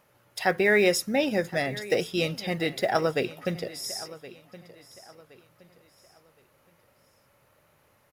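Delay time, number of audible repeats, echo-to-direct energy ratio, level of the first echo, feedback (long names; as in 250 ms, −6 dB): 1,069 ms, 2, −17.0 dB, −17.5 dB, 34%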